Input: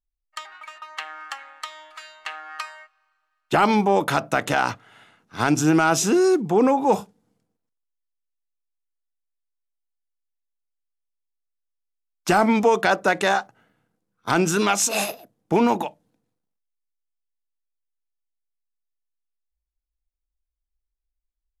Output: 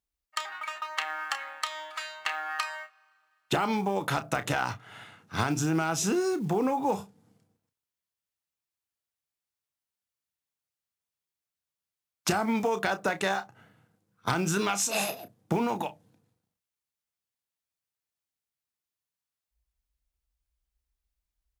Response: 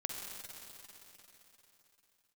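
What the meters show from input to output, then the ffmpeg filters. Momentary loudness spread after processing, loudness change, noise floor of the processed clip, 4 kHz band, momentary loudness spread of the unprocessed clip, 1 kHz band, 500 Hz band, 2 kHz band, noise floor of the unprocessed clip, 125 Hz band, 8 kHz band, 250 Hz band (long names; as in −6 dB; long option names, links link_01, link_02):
10 LU, −9.5 dB, below −85 dBFS, −4.5 dB, 19 LU, −8.0 dB, −9.5 dB, −6.5 dB, −83 dBFS, −4.0 dB, −6.0 dB, −8.5 dB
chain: -filter_complex "[0:a]highpass=71,asubboost=boost=2.5:cutoff=150,acompressor=threshold=-30dB:ratio=5,acrusher=bits=8:mode=log:mix=0:aa=0.000001,asplit=2[link_01][link_02];[link_02]adelay=31,volume=-11dB[link_03];[link_01][link_03]amix=inputs=2:normalize=0,volume=4dB"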